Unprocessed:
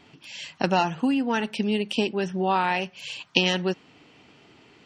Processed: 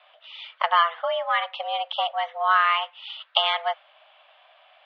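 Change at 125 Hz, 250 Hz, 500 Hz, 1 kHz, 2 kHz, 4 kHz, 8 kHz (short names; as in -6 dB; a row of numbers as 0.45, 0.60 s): under -40 dB, under -40 dB, -2.5 dB, +5.0 dB, +2.5 dB, +3.0 dB, under -25 dB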